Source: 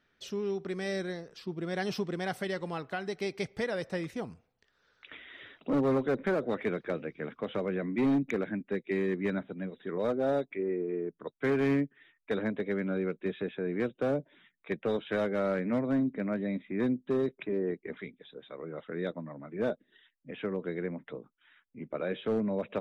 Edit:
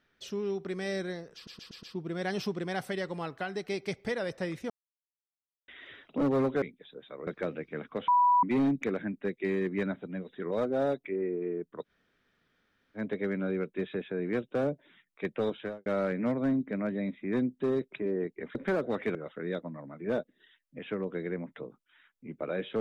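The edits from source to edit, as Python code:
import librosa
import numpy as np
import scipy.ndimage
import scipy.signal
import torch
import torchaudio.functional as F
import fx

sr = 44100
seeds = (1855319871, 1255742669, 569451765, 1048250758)

y = fx.studio_fade_out(x, sr, start_s=14.99, length_s=0.34)
y = fx.edit(y, sr, fx.stutter(start_s=1.35, slice_s=0.12, count=5),
    fx.silence(start_s=4.22, length_s=0.98),
    fx.swap(start_s=6.14, length_s=0.6, other_s=18.02, other_length_s=0.65),
    fx.bleep(start_s=7.55, length_s=0.35, hz=982.0, db=-19.5),
    fx.room_tone_fill(start_s=11.34, length_s=1.12, crossfade_s=0.1), tone=tone)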